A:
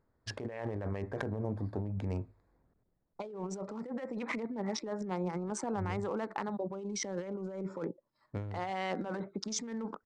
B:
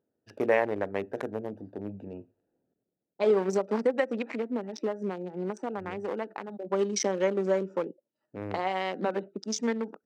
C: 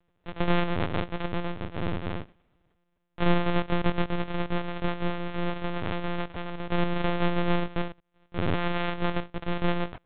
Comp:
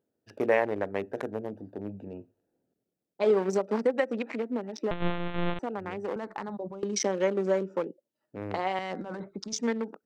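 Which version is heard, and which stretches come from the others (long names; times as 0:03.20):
B
0:04.91–0:05.59: punch in from C
0:06.16–0:06.83: punch in from A
0:08.79–0:09.53: punch in from A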